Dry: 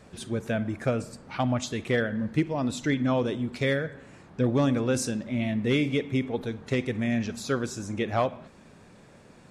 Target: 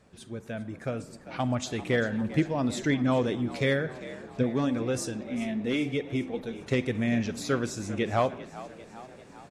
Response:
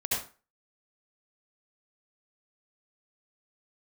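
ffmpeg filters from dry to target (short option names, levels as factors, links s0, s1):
-filter_complex "[0:a]asplit=3[s0][s1][s2];[s0]afade=t=out:st=4.42:d=0.02[s3];[s1]flanger=delay=2.2:depth=2.4:regen=-45:speed=1:shape=sinusoidal,afade=t=in:st=4.42:d=0.02,afade=t=out:st=6.59:d=0.02[s4];[s2]afade=t=in:st=6.59:d=0.02[s5];[s3][s4][s5]amix=inputs=3:normalize=0,asplit=7[s6][s7][s8][s9][s10][s11][s12];[s7]adelay=396,afreqshift=57,volume=0.15[s13];[s8]adelay=792,afreqshift=114,volume=0.0881[s14];[s9]adelay=1188,afreqshift=171,volume=0.0519[s15];[s10]adelay=1584,afreqshift=228,volume=0.0309[s16];[s11]adelay=1980,afreqshift=285,volume=0.0182[s17];[s12]adelay=2376,afreqshift=342,volume=0.0107[s18];[s6][s13][s14][s15][s16][s17][s18]amix=inputs=7:normalize=0,dynaudnorm=f=530:g=5:m=2.82,volume=0.376"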